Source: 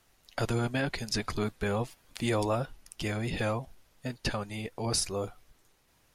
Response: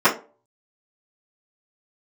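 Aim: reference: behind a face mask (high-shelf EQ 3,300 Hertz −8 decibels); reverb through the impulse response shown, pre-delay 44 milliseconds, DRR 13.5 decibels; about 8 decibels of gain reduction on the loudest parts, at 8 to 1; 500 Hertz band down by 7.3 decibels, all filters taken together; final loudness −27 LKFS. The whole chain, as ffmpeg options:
-filter_complex "[0:a]equalizer=frequency=500:width_type=o:gain=-9,acompressor=threshold=-35dB:ratio=8,asplit=2[link_01][link_02];[1:a]atrim=start_sample=2205,adelay=44[link_03];[link_02][link_03]afir=irnorm=-1:irlink=0,volume=-35.5dB[link_04];[link_01][link_04]amix=inputs=2:normalize=0,highshelf=frequency=3300:gain=-8,volume=15dB"

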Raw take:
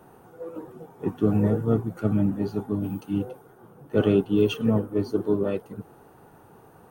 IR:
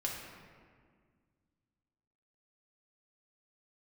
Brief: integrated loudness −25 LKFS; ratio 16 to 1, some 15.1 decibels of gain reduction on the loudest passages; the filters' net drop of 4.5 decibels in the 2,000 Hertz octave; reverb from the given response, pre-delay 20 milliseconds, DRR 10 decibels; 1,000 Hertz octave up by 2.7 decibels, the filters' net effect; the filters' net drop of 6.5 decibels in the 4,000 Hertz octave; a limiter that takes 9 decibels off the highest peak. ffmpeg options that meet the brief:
-filter_complex "[0:a]equalizer=frequency=1000:width_type=o:gain=6,equalizer=frequency=2000:width_type=o:gain=-8.5,equalizer=frequency=4000:width_type=o:gain=-5.5,acompressor=threshold=-30dB:ratio=16,alimiter=level_in=5dB:limit=-24dB:level=0:latency=1,volume=-5dB,asplit=2[link_01][link_02];[1:a]atrim=start_sample=2205,adelay=20[link_03];[link_02][link_03]afir=irnorm=-1:irlink=0,volume=-12.5dB[link_04];[link_01][link_04]amix=inputs=2:normalize=0,volume=14.5dB"

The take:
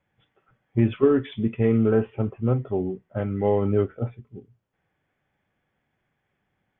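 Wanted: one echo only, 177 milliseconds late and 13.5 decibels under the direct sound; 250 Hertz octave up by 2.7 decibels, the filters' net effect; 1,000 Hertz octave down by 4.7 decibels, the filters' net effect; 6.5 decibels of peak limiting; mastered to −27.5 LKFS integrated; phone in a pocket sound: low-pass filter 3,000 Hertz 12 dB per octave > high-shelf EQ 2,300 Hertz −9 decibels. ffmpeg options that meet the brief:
ffmpeg -i in.wav -af "equalizer=frequency=250:width_type=o:gain=3.5,equalizer=frequency=1000:width_type=o:gain=-5,alimiter=limit=-13dB:level=0:latency=1,lowpass=3000,highshelf=frequency=2300:gain=-9,aecho=1:1:177:0.211,volume=-2.5dB" out.wav

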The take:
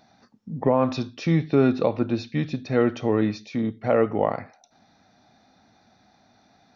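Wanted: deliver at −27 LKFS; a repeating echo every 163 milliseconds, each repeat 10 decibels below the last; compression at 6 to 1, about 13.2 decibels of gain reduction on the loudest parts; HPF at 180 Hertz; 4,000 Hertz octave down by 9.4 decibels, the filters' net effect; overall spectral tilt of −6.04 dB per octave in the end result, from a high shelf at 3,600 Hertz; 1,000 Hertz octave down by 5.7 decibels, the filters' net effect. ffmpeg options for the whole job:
ffmpeg -i in.wav -af "highpass=180,equalizer=frequency=1000:width_type=o:gain=-7,highshelf=frequency=3600:gain=-4,equalizer=frequency=4000:width_type=o:gain=-8.5,acompressor=threshold=-31dB:ratio=6,aecho=1:1:163|326|489|652:0.316|0.101|0.0324|0.0104,volume=9dB" out.wav

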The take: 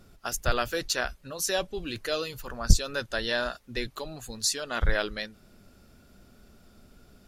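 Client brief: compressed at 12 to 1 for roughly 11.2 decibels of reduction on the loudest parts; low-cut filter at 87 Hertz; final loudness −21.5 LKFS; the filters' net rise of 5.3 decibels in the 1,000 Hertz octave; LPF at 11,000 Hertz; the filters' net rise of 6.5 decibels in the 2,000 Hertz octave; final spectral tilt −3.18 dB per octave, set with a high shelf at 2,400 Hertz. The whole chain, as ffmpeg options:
ffmpeg -i in.wav -af "highpass=87,lowpass=11000,equalizer=frequency=1000:width_type=o:gain=4.5,equalizer=frequency=2000:width_type=o:gain=4,highshelf=frequency=2400:gain=6.5,acompressor=threshold=-28dB:ratio=12,volume=11.5dB" out.wav

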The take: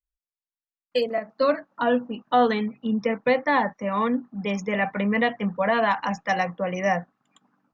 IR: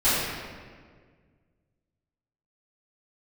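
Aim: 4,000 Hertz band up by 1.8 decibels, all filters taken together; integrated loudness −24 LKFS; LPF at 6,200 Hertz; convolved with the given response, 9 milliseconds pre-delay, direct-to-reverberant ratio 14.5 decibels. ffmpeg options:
-filter_complex "[0:a]lowpass=6200,equalizer=frequency=4000:width_type=o:gain=3,asplit=2[link_01][link_02];[1:a]atrim=start_sample=2205,adelay=9[link_03];[link_02][link_03]afir=irnorm=-1:irlink=0,volume=-31.5dB[link_04];[link_01][link_04]amix=inputs=2:normalize=0"

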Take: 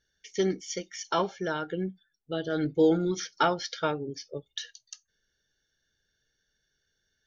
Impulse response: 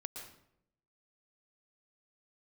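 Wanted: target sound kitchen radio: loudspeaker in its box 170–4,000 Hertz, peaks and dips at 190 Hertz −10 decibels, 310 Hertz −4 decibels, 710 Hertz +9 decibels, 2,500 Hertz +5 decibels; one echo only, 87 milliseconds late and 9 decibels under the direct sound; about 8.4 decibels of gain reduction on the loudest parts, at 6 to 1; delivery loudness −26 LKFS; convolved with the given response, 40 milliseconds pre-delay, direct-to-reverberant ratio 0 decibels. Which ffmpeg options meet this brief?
-filter_complex "[0:a]acompressor=threshold=-26dB:ratio=6,aecho=1:1:87:0.355,asplit=2[link_01][link_02];[1:a]atrim=start_sample=2205,adelay=40[link_03];[link_02][link_03]afir=irnorm=-1:irlink=0,volume=2.5dB[link_04];[link_01][link_04]amix=inputs=2:normalize=0,highpass=170,equalizer=frequency=190:width_type=q:width=4:gain=-10,equalizer=frequency=310:width_type=q:width=4:gain=-4,equalizer=frequency=710:width_type=q:width=4:gain=9,equalizer=frequency=2500:width_type=q:width=4:gain=5,lowpass=frequency=4000:width=0.5412,lowpass=frequency=4000:width=1.3066,volume=4dB"

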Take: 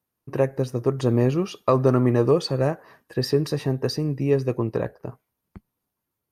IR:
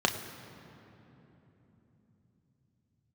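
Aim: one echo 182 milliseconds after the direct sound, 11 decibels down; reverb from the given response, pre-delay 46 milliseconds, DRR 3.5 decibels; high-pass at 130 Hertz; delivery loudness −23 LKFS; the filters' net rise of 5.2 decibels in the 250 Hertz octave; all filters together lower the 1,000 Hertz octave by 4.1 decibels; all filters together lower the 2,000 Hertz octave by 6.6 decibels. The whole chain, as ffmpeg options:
-filter_complex "[0:a]highpass=130,equalizer=frequency=250:width_type=o:gain=7,equalizer=frequency=1000:width_type=o:gain=-3.5,equalizer=frequency=2000:width_type=o:gain=-7.5,aecho=1:1:182:0.282,asplit=2[link_01][link_02];[1:a]atrim=start_sample=2205,adelay=46[link_03];[link_02][link_03]afir=irnorm=-1:irlink=0,volume=-15dB[link_04];[link_01][link_04]amix=inputs=2:normalize=0,volume=-4dB"

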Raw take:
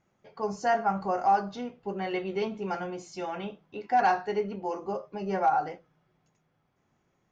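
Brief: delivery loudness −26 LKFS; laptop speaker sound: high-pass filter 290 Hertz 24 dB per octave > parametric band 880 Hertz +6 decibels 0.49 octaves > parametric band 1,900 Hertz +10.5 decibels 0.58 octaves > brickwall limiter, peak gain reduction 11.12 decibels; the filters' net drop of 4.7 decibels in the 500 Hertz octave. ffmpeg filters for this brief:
ffmpeg -i in.wav -af "highpass=frequency=290:width=0.5412,highpass=frequency=290:width=1.3066,equalizer=frequency=500:width_type=o:gain=-8.5,equalizer=frequency=880:width_type=o:width=0.49:gain=6,equalizer=frequency=1900:width_type=o:width=0.58:gain=10.5,volume=8.5dB,alimiter=limit=-14.5dB:level=0:latency=1" out.wav

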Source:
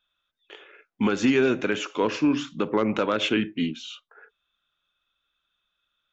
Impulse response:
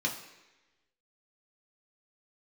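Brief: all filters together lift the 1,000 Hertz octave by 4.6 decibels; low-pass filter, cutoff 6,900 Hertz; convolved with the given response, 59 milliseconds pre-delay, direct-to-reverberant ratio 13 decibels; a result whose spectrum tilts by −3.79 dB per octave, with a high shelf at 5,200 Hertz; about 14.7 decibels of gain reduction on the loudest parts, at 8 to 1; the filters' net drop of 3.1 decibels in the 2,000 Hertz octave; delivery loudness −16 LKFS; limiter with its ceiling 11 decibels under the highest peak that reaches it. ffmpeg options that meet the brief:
-filter_complex "[0:a]lowpass=6900,equalizer=frequency=1000:width_type=o:gain=7.5,equalizer=frequency=2000:width_type=o:gain=-6.5,highshelf=frequency=5200:gain=-6,acompressor=threshold=-32dB:ratio=8,alimiter=level_in=5.5dB:limit=-24dB:level=0:latency=1,volume=-5.5dB,asplit=2[link_01][link_02];[1:a]atrim=start_sample=2205,adelay=59[link_03];[link_02][link_03]afir=irnorm=-1:irlink=0,volume=-19dB[link_04];[link_01][link_04]amix=inputs=2:normalize=0,volume=24dB"

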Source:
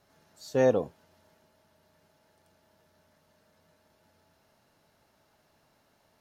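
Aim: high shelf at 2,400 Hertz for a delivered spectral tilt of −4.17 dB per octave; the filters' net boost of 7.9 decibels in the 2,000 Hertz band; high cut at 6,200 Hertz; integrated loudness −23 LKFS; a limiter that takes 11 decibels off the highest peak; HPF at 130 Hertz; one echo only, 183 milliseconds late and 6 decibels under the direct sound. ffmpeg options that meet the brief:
ffmpeg -i in.wav -af "highpass=130,lowpass=6200,equalizer=frequency=2000:width_type=o:gain=5.5,highshelf=frequency=2400:gain=8.5,alimiter=limit=-22dB:level=0:latency=1,aecho=1:1:183:0.501,volume=12dB" out.wav

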